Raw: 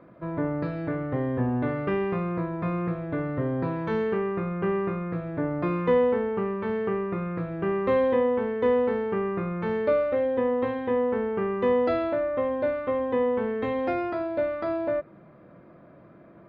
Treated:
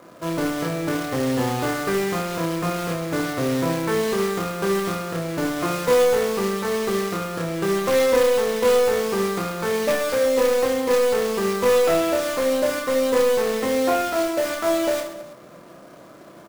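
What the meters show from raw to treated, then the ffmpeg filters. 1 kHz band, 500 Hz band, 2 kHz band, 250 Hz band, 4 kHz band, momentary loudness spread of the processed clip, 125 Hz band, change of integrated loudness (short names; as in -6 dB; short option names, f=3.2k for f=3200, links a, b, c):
+5.5 dB, +5.0 dB, +8.5 dB, +2.5 dB, n/a, 7 LU, +1.0 dB, +5.0 dB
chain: -filter_complex "[0:a]asplit=2[a][b];[b]highpass=f=720:p=1,volume=15dB,asoftclip=type=tanh:threshold=-11.5dB[c];[a][c]amix=inputs=2:normalize=0,lowpass=f=1.6k:p=1,volume=-6dB,acrusher=bits=2:mode=log:mix=0:aa=0.000001,aecho=1:1:30|72|130.8|213.1|328.4:0.631|0.398|0.251|0.158|0.1"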